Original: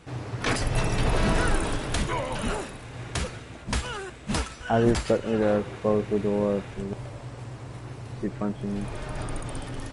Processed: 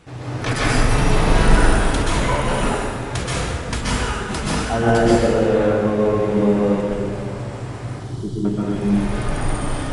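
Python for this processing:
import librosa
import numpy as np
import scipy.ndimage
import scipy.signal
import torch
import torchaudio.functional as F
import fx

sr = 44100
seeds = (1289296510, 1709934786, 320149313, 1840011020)

p1 = fx.rider(x, sr, range_db=4, speed_s=2.0)
p2 = x + F.gain(torch.from_numpy(p1), -1.5).numpy()
p3 = fx.brickwall_bandstop(p2, sr, low_hz=440.0, high_hz=2900.0, at=(7.84, 8.45))
p4 = fx.rev_plate(p3, sr, seeds[0], rt60_s=1.8, hf_ratio=0.6, predelay_ms=115, drr_db=-7.5)
y = F.gain(torch.from_numpy(p4), -5.0).numpy()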